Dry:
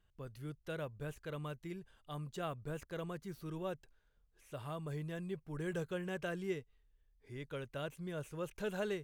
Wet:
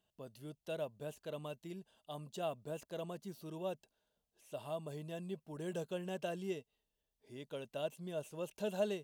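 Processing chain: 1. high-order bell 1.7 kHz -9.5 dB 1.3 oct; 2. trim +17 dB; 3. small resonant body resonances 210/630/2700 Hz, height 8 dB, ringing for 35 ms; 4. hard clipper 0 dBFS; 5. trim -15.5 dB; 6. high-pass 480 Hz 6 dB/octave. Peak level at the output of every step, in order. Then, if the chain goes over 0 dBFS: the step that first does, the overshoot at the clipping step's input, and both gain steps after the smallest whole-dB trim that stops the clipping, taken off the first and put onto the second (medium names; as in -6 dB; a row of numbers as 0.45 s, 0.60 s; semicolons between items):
-27.5 dBFS, -10.5 dBFS, -5.0 dBFS, -5.0 dBFS, -20.5 dBFS, -24.0 dBFS; nothing clips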